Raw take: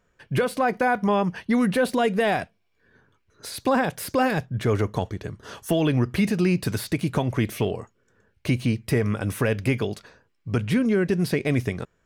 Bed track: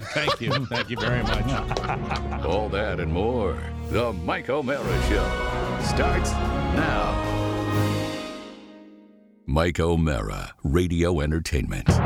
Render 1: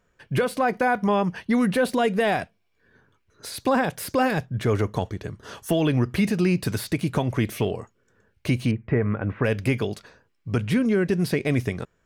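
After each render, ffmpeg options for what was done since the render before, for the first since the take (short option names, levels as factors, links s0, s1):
-filter_complex "[0:a]asettb=1/sr,asplit=3[s0][s1][s2];[s0]atrim=end=8.714[s3];[s1]atrim=start=8.71:end=9.44,asetpts=PTS-STARTPTS,afade=t=in:d=0.004:c=qsin,afade=t=out:st=0.726:d=0.004:c=qsin,lowpass=f=2100:w=0.5412,lowpass=f=2100:w=1.3066[s4];[s2]atrim=start=9.436[s5];[s3][s4]acrossfade=d=0.004:c1=hsin:c2=qsin[s6];[s6][s5]acrossfade=d=0.004:c1=qsin:c2=hsin"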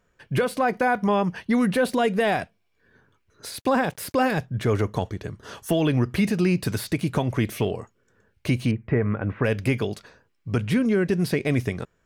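-filter_complex "[0:a]asettb=1/sr,asplit=3[s0][s1][s2];[s0]atrim=end=3.514[s3];[s1]atrim=start=3.51:end=4.15,asetpts=PTS-STARTPTS,afade=t=in:d=0.004:c=qsin,afade=t=out:st=0.636:d=0.004:c=qsin,aeval=exprs='sgn(val(0))*max(abs(val(0))-0.00299,0)':c=same[s4];[s2]atrim=start=4.146[s5];[s3][s4]acrossfade=d=0.004:c1=hsin:c2=qsin[s6];[s6][s5]acrossfade=d=0.004:c1=qsin:c2=hsin"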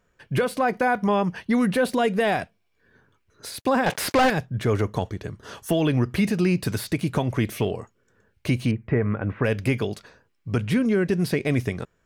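-filter_complex "[0:a]asettb=1/sr,asplit=3[s0][s1][s2];[s0]atrim=end=3.864[s3];[s1]atrim=start=3.86:end=4.3,asetpts=PTS-STARTPTS,afade=t=in:d=0.004:c=qsin,afade=t=out:st=0.436:d=0.004:c=qsin,asplit=2[s4][s5];[s5]highpass=f=720:p=1,volume=17.8,asoftclip=type=tanh:threshold=0.251[s6];[s4][s6]amix=inputs=2:normalize=0,lowpass=f=3300:p=1,volume=0.501[s7];[s2]atrim=start=4.296[s8];[s3][s7]acrossfade=d=0.004:c1=hsin:c2=qsin[s9];[s9][s8]acrossfade=d=0.004:c1=qsin:c2=hsin"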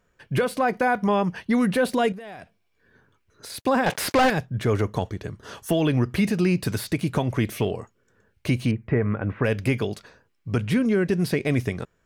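-filter_complex "[0:a]asettb=1/sr,asplit=3[s0][s1][s2];[s0]atrim=end=2.124[s3];[s1]atrim=start=2.12:end=3.5,asetpts=PTS-STARTPTS,afade=t=in:d=0.004:c=qsin,afade=t=out:st=1.376:d=0.004:c=qsin,acompressor=threshold=0.0178:ratio=20:attack=3.2:release=140:knee=1:detection=peak[s4];[s2]atrim=start=3.496[s5];[s3][s4]acrossfade=d=0.004:c1=hsin:c2=qsin[s6];[s6][s5]acrossfade=d=0.004:c1=qsin:c2=hsin"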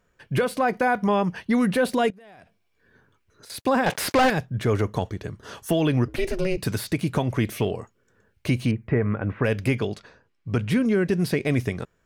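-filter_complex "[0:a]asettb=1/sr,asplit=3[s0][s1][s2];[s0]atrim=end=2.104[s3];[s1]atrim=start=2.1:end=3.5,asetpts=PTS-STARTPTS,afade=t=in:d=0.004:c=qsin,afade=t=out:st=1.396:d=0.004:c=qsin,acompressor=threshold=0.00631:ratio=12:attack=3.2:release=140:knee=1:detection=peak[s4];[s2]atrim=start=3.496[s5];[s3][s4]acrossfade=d=0.004:c1=hsin:c2=qsin[s6];[s6][s5]acrossfade=d=0.004:c1=qsin:c2=hsin,asettb=1/sr,asplit=3[s7][s8][s9];[s7]atrim=end=6.084[s10];[s8]atrim=start=6.08:end=6.58,asetpts=PTS-STARTPTS,afade=t=in:d=0.004:c=qsin,afade=t=out:st=0.496:d=0.004:c=qsin,aeval=exprs='val(0)*sin(2*PI*190*n/s)':c=same[s11];[s9]atrim=start=6.576[s12];[s10][s11]acrossfade=d=0.004:c1=hsin:c2=qsin[s13];[s13][s12]acrossfade=d=0.004:c1=qsin:c2=hsin,asettb=1/sr,asplit=3[s14][s15][s16];[s14]atrim=end=9.754[s17];[s15]atrim=start=9.75:end=10.67,asetpts=PTS-STARTPTS,afade=t=in:d=0.004:c=qsin,afade=t=out:st=0.916:d=0.004:c=qsin,adynamicsmooth=sensitivity=7:basefreq=7600[s18];[s16]atrim=start=10.666[s19];[s17][s18]acrossfade=d=0.004:c1=hsin:c2=qsin[s20];[s20][s19]acrossfade=d=0.004:c1=qsin:c2=hsin"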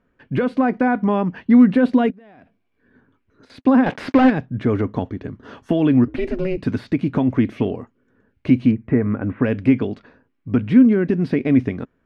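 -af "lowpass=2600,equalizer=f=260:w=2.7:g=13"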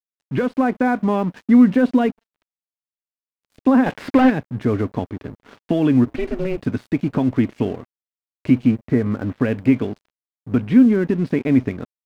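-af "acrusher=bits=11:mix=0:aa=0.000001,aeval=exprs='sgn(val(0))*max(abs(val(0))-0.0106,0)':c=same"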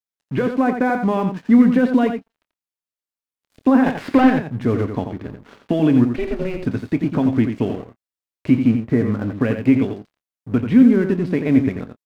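-filter_complex "[0:a]asplit=2[s0][s1];[s1]adelay=26,volume=0.2[s2];[s0][s2]amix=inputs=2:normalize=0,aecho=1:1:87:0.422"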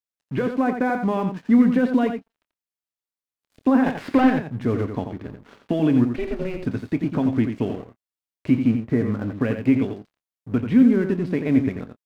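-af "volume=0.668"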